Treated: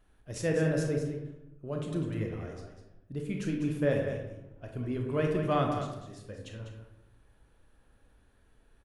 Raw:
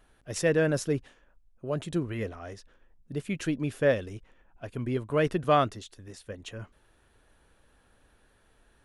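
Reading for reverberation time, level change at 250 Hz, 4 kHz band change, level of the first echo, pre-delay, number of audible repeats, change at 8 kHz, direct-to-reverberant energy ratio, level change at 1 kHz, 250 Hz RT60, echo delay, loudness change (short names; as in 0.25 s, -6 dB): 0.90 s, -1.0 dB, -6.0 dB, -8.5 dB, 24 ms, 1, -6.5 dB, 0.5 dB, -5.5 dB, 1.2 s, 0.199 s, -3.5 dB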